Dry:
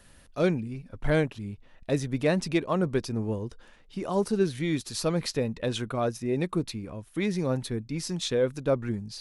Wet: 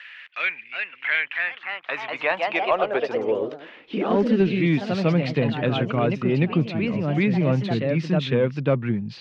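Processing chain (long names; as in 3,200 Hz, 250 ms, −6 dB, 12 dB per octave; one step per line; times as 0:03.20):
delay with pitch and tempo change per echo 400 ms, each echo +2 semitones, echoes 3, each echo −6 dB
high-pass filter sweep 2,000 Hz → 140 Hz, 0:01.15–0:04.98
in parallel at −5 dB: asymmetric clip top −17.5 dBFS
on the sum: transistor ladder low-pass 3,200 Hz, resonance 45%
multiband upward and downward compressor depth 40%
level +8 dB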